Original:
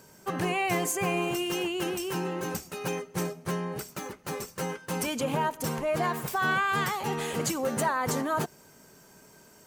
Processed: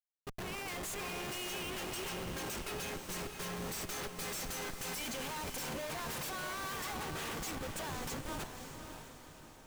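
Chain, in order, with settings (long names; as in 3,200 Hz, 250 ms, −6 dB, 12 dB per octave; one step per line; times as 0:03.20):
source passing by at 0:04.30, 7 m/s, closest 5.2 metres
tilt shelving filter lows −9.5 dB, about 1,500 Hz
comparator with hysteresis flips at −43 dBFS
on a send: feedback delay with all-pass diffusion 557 ms, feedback 48%, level −7 dB
on the sum: level −1.5 dB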